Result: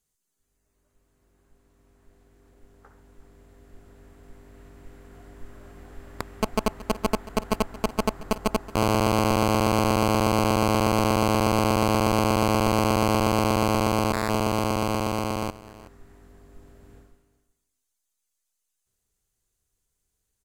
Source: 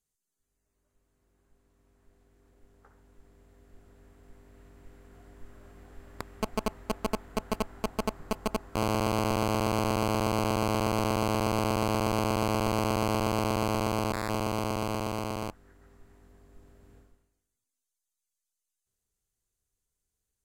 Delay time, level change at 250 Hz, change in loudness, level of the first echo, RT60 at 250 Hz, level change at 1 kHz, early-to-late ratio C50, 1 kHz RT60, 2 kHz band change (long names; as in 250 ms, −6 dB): 373 ms, +6.5 dB, +6.0 dB, −18.0 dB, no reverb audible, +6.0 dB, no reverb audible, no reverb audible, +6.0 dB